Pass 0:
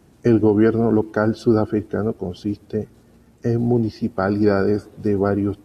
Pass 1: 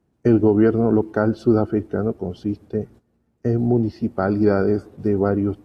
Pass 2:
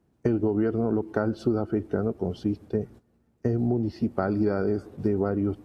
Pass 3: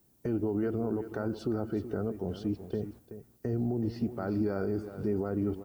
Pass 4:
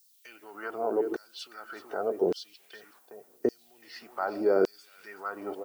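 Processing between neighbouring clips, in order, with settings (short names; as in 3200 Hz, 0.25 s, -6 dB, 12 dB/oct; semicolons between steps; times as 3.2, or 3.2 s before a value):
high shelf 2400 Hz -8.5 dB; gate -41 dBFS, range -15 dB
compressor, threshold -21 dBFS, peak gain reduction 10.5 dB
limiter -19.5 dBFS, peak gain reduction 9.5 dB; added noise violet -66 dBFS; echo 0.377 s -12 dB; gain -3 dB
LFO high-pass saw down 0.86 Hz 330–5100 Hz; gain +5.5 dB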